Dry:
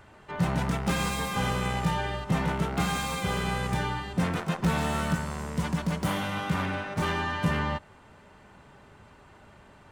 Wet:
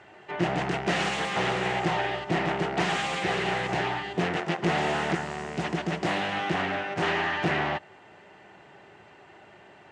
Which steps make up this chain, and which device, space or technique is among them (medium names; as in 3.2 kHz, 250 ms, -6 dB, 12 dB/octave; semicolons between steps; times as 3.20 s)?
full-range speaker at full volume (loudspeaker Doppler distortion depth 0.95 ms; cabinet simulation 150–7700 Hz, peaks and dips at 240 Hz -6 dB, 360 Hz +8 dB, 730 Hz +8 dB, 1.1 kHz -3 dB, 1.9 kHz +7 dB, 2.8 kHz +6 dB)